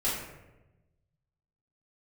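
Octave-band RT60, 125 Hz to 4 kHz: 1.8, 1.3, 1.2, 0.90, 0.85, 0.55 seconds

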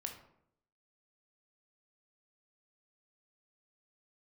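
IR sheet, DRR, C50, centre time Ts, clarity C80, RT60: 3.0 dB, 7.5 dB, 19 ms, 11.5 dB, 0.75 s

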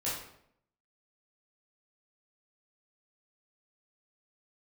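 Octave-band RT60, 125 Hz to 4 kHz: 0.75, 0.80, 0.75, 0.65, 0.60, 0.50 seconds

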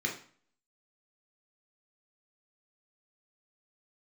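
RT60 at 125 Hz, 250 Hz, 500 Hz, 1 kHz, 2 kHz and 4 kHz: 0.50, 0.50, 0.45, 0.50, 0.45, 0.40 seconds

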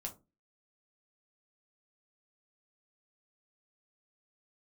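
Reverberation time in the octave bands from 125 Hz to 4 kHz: 0.35, 0.40, 0.30, 0.25, 0.15, 0.15 seconds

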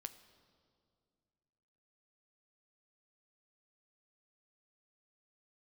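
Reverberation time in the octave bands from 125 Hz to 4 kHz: 2.8, 2.7, 2.4, 2.1, 1.5, 1.7 seconds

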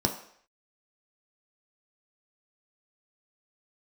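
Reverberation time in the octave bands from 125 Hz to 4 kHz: 0.35, 0.50, 0.60, 0.60, 0.65, 0.65 seconds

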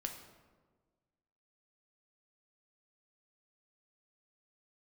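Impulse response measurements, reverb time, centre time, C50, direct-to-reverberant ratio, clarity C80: 1.4 s, 26 ms, 7.0 dB, 3.0 dB, 9.0 dB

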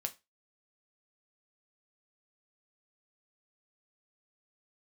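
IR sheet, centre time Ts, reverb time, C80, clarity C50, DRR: 5 ms, 0.25 s, 26.5 dB, 19.0 dB, 5.5 dB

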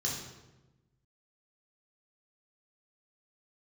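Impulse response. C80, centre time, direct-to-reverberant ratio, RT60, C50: 5.5 dB, 51 ms, −4.0 dB, 1.1 s, 3.0 dB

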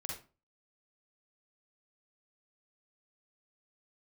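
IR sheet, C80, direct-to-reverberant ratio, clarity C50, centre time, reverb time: 9.5 dB, −2.0 dB, 1.0 dB, 39 ms, 0.35 s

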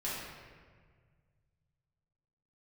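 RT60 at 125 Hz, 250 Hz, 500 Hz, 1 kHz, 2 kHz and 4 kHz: 3.1, 2.1, 1.8, 1.6, 1.5, 1.1 seconds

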